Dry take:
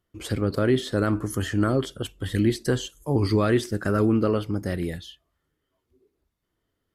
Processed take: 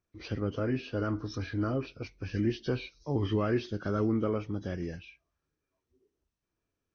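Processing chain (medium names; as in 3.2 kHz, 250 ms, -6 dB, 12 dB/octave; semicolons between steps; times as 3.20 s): knee-point frequency compression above 1.4 kHz 1.5:1; 0.50–2.11 s: comb of notches 190 Hz; trim -7.5 dB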